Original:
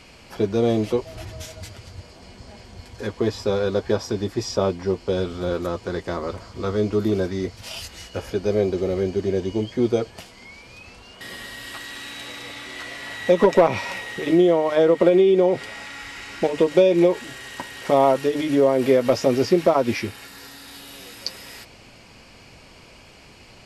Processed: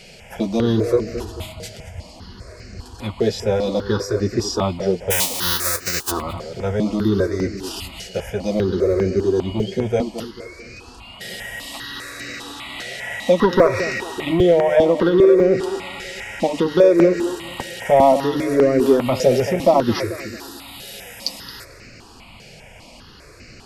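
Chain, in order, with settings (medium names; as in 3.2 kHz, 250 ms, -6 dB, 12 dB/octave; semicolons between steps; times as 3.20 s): 5.10–6.10 s: formants flattened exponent 0.1; in parallel at -8.5 dB: hard clipper -20 dBFS, distortion -6 dB; on the sum: tape echo 220 ms, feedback 43%, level -9 dB, low-pass 2.1 kHz; stepped phaser 5 Hz 290–3300 Hz; trim +4 dB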